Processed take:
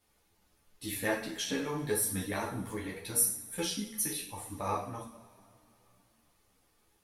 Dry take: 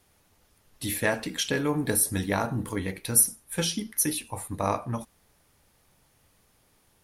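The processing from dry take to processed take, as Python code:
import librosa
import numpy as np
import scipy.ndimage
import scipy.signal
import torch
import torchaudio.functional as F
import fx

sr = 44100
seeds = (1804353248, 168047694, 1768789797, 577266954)

y = fx.rev_double_slope(x, sr, seeds[0], early_s=0.5, late_s=3.2, knee_db=-21, drr_db=0.0)
y = fx.ensemble(y, sr)
y = y * 10.0 ** (-6.0 / 20.0)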